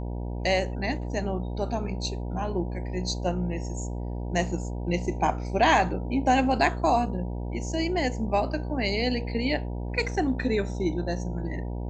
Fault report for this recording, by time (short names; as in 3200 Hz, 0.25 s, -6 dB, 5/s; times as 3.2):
buzz 60 Hz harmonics 16 -32 dBFS